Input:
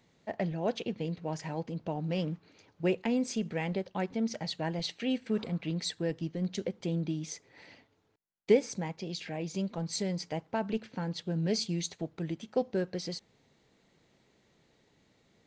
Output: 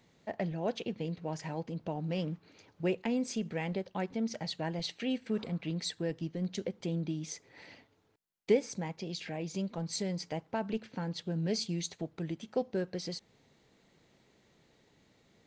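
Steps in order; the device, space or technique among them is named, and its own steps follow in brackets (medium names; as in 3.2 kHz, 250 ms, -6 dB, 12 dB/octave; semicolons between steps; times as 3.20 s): parallel compression (in parallel at -3 dB: compression, threshold -42 dBFS, peak gain reduction 22 dB); on the sum: trim -3.5 dB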